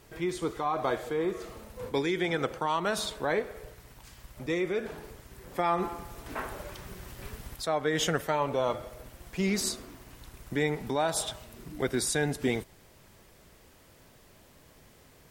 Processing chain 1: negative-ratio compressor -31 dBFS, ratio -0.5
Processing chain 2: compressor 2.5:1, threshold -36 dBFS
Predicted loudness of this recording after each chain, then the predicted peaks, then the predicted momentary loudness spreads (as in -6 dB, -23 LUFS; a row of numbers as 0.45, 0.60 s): -34.5, -38.5 LUFS; -16.5, -21.0 dBFS; 23, 21 LU